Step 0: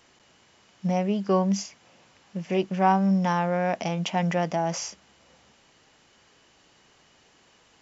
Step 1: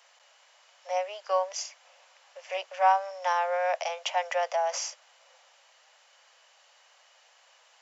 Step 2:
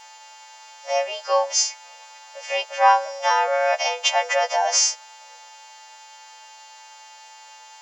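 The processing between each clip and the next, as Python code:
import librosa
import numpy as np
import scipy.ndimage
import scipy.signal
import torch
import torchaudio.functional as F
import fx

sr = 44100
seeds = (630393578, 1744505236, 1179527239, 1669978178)

y1 = scipy.signal.sosfilt(scipy.signal.butter(12, 520.0, 'highpass', fs=sr, output='sos'), x)
y2 = fx.freq_snap(y1, sr, grid_st=2)
y2 = y2 + 10.0 ** (-53.0 / 20.0) * np.sin(2.0 * np.pi * 870.0 * np.arange(len(y2)) / sr)
y2 = F.gain(torch.from_numpy(y2), 7.0).numpy()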